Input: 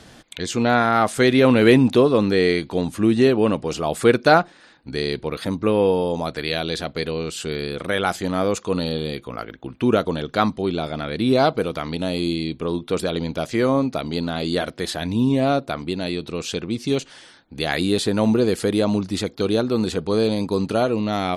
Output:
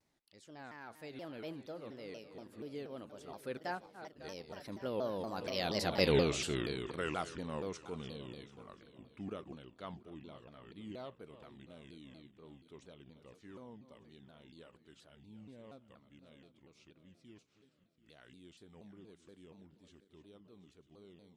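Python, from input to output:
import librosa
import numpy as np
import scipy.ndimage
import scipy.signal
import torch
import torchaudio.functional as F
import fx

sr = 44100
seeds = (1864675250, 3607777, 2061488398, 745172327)

y = fx.reverse_delay_fb(x, sr, ms=322, feedback_pct=62, wet_db=-12.5)
y = fx.doppler_pass(y, sr, speed_mps=49, closest_m=9.7, pass_at_s=6.13)
y = fx.vibrato_shape(y, sr, shape='saw_down', rate_hz=4.2, depth_cents=250.0)
y = F.gain(torch.from_numpy(y), -3.0).numpy()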